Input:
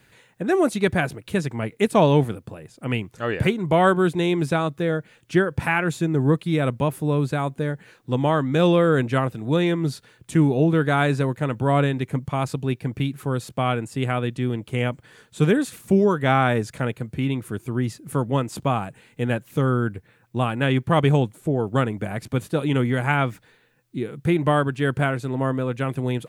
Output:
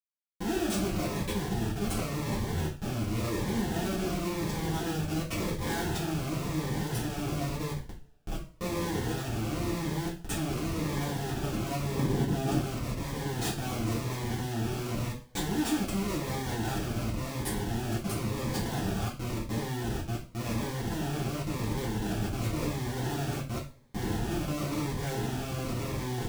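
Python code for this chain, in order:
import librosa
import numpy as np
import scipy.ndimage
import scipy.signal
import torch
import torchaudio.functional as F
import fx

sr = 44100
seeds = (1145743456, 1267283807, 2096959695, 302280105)

p1 = fx.reverse_delay(x, sr, ms=180, wet_db=-11.0)
p2 = fx.over_compress(p1, sr, threshold_db=-22.0, ratio=-0.5)
p3 = p1 + (p2 * 10.0 ** (0.5 / 20.0))
p4 = scipy.signal.sosfilt(scipy.signal.butter(4, 56.0, 'highpass', fs=sr, output='sos'), p3)
p5 = 10.0 ** (-15.5 / 20.0) * np.tanh(p4 / 10.0 ** (-15.5 / 20.0))
p6 = fx.level_steps(p5, sr, step_db=18)
p7 = fx.graphic_eq(p6, sr, hz=(125, 250, 500, 4000), db=(-6, -4, -8, -3), at=(7.71, 8.61))
p8 = p7 + fx.echo_single(p7, sr, ms=291, db=-19.5, dry=0)
p9 = fx.schmitt(p8, sr, flips_db=-34.5)
p10 = fx.peak_eq(p9, sr, hz=250.0, db=8.0, octaves=2.3, at=(11.94, 12.58))
p11 = fx.rev_double_slope(p10, sr, seeds[0], early_s=0.36, late_s=1.6, knee_db=-27, drr_db=-7.0)
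y = fx.notch_cascade(p11, sr, direction='falling', hz=0.93)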